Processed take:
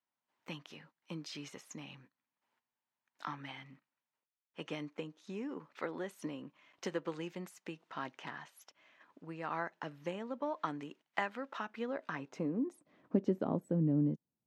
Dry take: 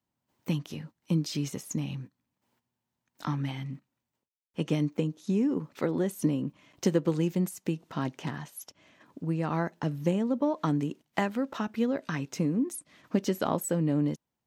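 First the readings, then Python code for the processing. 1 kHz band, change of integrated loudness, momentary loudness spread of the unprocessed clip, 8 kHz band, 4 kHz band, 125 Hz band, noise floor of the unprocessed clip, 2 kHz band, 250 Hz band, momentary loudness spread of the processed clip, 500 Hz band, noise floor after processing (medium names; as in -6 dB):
-5.5 dB, -9.0 dB, 12 LU, -16.0 dB, -7.5 dB, -11.5 dB, under -85 dBFS, -3.5 dB, -10.0 dB, 16 LU, -8.5 dB, under -85 dBFS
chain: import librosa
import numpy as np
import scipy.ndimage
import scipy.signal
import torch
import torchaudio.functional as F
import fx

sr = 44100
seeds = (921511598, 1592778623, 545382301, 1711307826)

y = fx.filter_sweep_bandpass(x, sr, from_hz=1600.0, to_hz=200.0, start_s=11.64, end_s=13.67, q=0.74)
y = F.gain(torch.from_numpy(y), -2.5).numpy()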